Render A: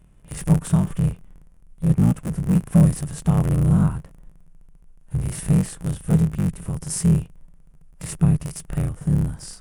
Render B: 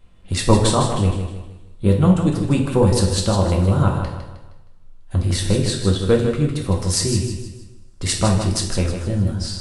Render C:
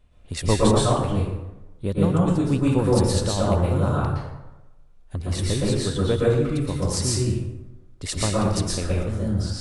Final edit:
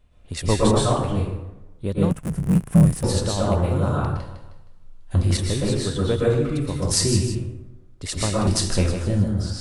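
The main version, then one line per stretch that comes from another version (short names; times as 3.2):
C
2.11–3.03 from A
4.17–5.37 from B
6.91–7.35 from B
8.47–9.24 from B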